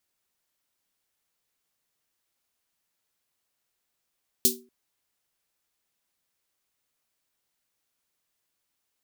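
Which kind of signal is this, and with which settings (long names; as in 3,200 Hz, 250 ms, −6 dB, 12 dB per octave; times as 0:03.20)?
synth snare length 0.24 s, tones 240 Hz, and 380 Hz, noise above 3,900 Hz, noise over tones 11.5 dB, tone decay 0.38 s, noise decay 0.19 s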